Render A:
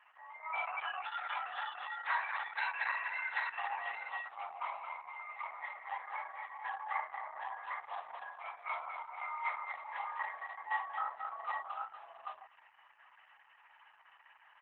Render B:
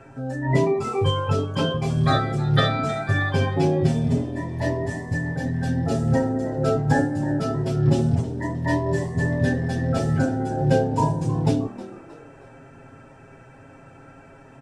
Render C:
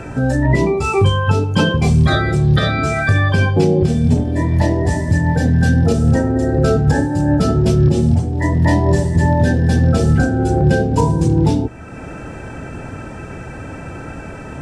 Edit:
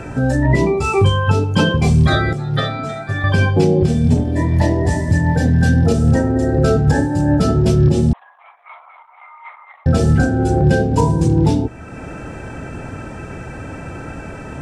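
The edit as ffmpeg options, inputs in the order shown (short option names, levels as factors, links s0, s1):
-filter_complex "[2:a]asplit=3[s0][s1][s2];[s0]atrim=end=2.332[s3];[1:a]atrim=start=2.328:end=3.242[s4];[s1]atrim=start=3.238:end=8.132[s5];[0:a]atrim=start=8.128:end=9.862[s6];[s2]atrim=start=9.858[s7];[s3][s4]acrossfade=d=0.004:c1=hsin:c2=hsin[s8];[s8][s5]acrossfade=d=0.004:c1=hsin:c2=hsin[s9];[s9][s6]acrossfade=d=0.004:c1=hsin:c2=hsin[s10];[s10][s7]acrossfade=d=0.004:c1=hsin:c2=hsin"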